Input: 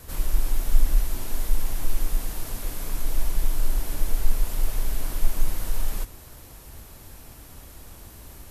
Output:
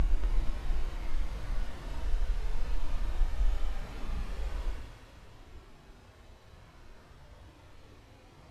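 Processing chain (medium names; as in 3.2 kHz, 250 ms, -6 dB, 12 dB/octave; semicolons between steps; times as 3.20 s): Paulstretch 7.8×, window 0.05 s, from 5.43 s; low-pass 3.6 kHz 12 dB/octave; thinning echo 237 ms, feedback 62%, level -7 dB; trim -7 dB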